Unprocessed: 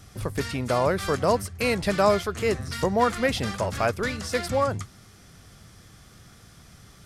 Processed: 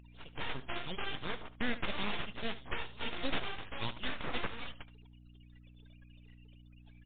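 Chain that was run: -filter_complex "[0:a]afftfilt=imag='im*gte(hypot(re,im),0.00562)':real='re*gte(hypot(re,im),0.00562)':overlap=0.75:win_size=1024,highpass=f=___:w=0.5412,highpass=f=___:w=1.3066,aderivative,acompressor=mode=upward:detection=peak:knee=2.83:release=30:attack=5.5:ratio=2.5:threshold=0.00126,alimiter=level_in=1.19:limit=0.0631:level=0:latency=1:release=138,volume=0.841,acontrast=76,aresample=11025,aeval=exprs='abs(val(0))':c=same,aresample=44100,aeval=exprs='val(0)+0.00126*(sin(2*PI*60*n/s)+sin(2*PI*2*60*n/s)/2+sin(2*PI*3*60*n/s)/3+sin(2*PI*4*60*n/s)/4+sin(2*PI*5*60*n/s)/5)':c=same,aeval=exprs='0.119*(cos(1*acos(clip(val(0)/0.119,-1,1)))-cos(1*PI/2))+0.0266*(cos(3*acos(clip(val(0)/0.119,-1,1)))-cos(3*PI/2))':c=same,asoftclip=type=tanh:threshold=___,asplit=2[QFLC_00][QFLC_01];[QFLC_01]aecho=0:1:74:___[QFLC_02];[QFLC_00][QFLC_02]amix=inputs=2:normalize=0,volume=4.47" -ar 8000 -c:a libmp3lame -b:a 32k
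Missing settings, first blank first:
1.5k, 1.5k, 0.02, 0.168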